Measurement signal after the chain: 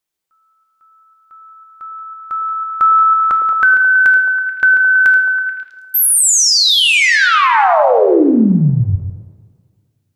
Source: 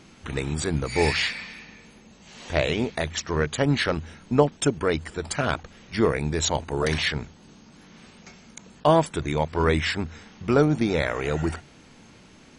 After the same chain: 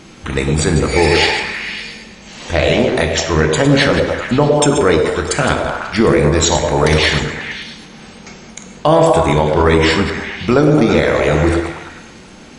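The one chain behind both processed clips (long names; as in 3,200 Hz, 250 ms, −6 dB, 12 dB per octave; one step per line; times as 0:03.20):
delay that plays each chunk backwards 100 ms, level −9 dB
on a send: echo through a band-pass that steps 108 ms, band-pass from 450 Hz, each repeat 0.7 octaves, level −1.5 dB
on the sum: coupled-rooms reverb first 0.78 s, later 2 s, from −18 dB, DRR 7 dB
boost into a limiter +11.5 dB
level −1 dB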